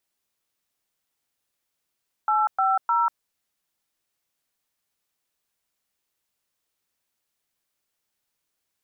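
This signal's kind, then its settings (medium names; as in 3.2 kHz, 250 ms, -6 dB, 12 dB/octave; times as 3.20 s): DTMF "850", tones 192 ms, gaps 113 ms, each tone -21 dBFS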